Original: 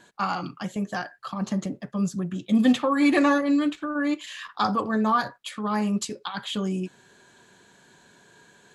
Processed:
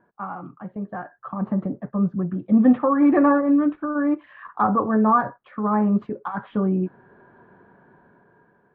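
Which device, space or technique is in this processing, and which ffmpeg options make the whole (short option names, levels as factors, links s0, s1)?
action camera in a waterproof case: -af "lowpass=f=1400:w=0.5412,lowpass=f=1400:w=1.3066,dynaudnorm=f=360:g=7:m=3.76,volume=0.596" -ar 24000 -c:a aac -b:a 48k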